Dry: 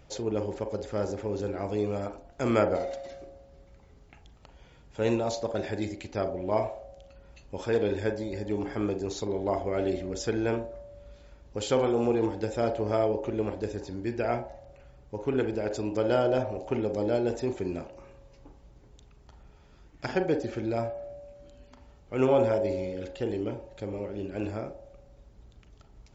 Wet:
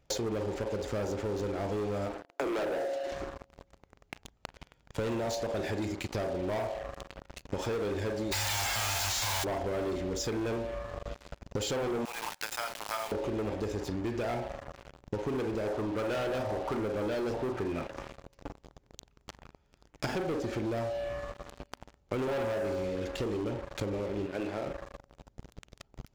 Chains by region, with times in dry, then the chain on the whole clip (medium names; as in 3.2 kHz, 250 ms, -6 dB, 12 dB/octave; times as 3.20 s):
2.14–3.12 s: steep high-pass 280 Hz 96 dB/octave + tilt EQ -2 dB/octave + overload inside the chain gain 14.5 dB
8.31–9.43 s: formants flattened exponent 0.3 + elliptic band-stop 110–650 Hz + level flattener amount 70%
12.05–13.12 s: high-pass 1 kHz 24 dB/octave + companded quantiser 4-bit
15.67–17.87 s: peaking EQ 1.2 kHz +7 dB 0.35 oct + hum notches 60/120/180 Hz + LFO low-pass saw up 1.2 Hz 870–5700 Hz
24.26–24.67 s: band-pass 100–3600 Hz + bass shelf 230 Hz -10.5 dB
whole clip: waveshaping leveller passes 5; compression 10:1, threshold -28 dBFS; trim -3.5 dB